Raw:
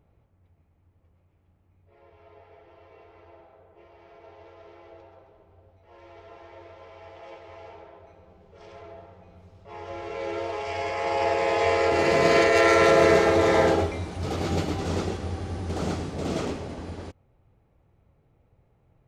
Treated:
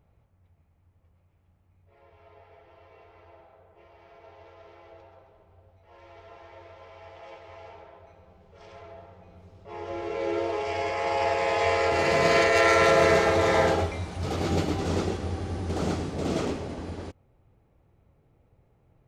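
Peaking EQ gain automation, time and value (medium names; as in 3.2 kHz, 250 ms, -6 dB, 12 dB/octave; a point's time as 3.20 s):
peaking EQ 330 Hz 1.1 oct
8.91 s -5 dB
9.81 s +5.5 dB
10.65 s +5.5 dB
11.29 s -5.5 dB
14.05 s -5.5 dB
14.50 s +1.5 dB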